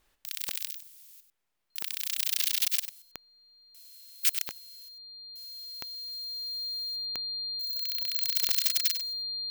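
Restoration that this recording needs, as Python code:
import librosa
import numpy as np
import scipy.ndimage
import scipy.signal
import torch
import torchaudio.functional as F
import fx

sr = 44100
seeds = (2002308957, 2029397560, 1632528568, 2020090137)

y = fx.fix_declick_ar(x, sr, threshold=10.0)
y = fx.notch(y, sr, hz=4200.0, q=30.0)
y = fx.fix_echo_inverse(y, sr, delay_ms=96, level_db=-10.5)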